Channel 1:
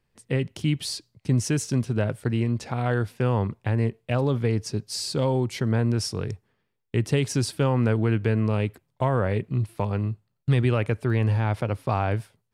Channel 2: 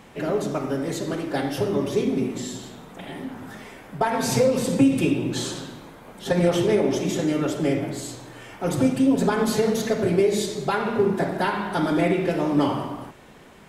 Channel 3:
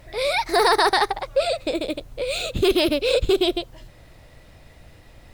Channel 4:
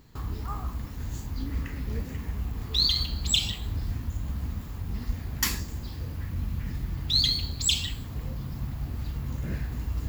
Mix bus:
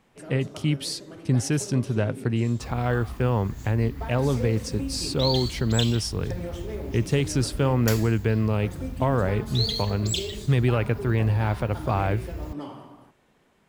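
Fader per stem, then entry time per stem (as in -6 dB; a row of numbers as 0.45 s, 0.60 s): 0.0 dB, -15.5 dB, mute, -4.5 dB; 0.00 s, 0.00 s, mute, 2.45 s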